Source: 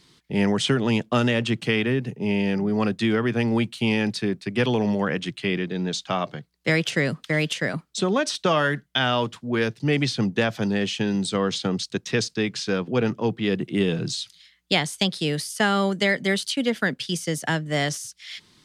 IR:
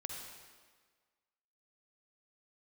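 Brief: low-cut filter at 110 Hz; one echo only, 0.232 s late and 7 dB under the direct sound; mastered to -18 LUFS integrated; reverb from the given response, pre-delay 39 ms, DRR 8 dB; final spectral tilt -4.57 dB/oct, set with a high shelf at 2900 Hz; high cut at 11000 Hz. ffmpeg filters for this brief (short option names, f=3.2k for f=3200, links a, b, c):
-filter_complex "[0:a]highpass=110,lowpass=11k,highshelf=f=2.9k:g=-6.5,aecho=1:1:232:0.447,asplit=2[a][b];[1:a]atrim=start_sample=2205,adelay=39[c];[b][c]afir=irnorm=-1:irlink=0,volume=-7dB[d];[a][d]amix=inputs=2:normalize=0,volume=6dB"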